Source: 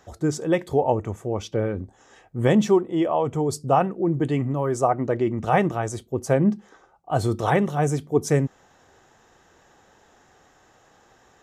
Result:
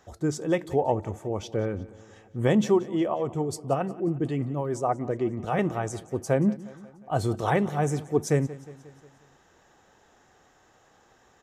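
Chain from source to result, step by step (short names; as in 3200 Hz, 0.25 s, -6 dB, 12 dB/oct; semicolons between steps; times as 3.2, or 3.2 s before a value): 3.14–5.59 rotary speaker horn 6.7 Hz; feedback echo 0.179 s, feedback 57%, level -19 dB; gain -3.5 dB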